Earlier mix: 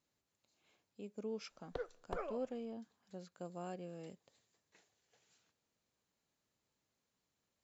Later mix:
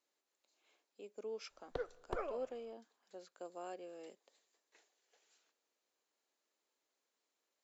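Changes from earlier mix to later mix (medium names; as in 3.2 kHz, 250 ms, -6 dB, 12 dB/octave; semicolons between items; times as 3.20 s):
speech: add high-pass 320 Hz 24 dB/octave; background: send +9.5 dB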